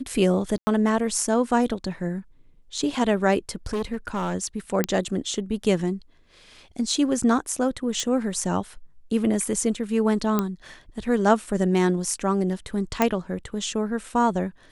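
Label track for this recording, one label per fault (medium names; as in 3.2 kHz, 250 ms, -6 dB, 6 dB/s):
0.580000	0.670000	dropout 90 ms
3.660000	4.350000	clipped -22.5 dBFS
4.840000	4.840000	pop -7 dBFS
8.000000	8.000000	pop
10.390000	10.390000	pop -9 dBFS
13.020000	13.020000	pop -6 dBFS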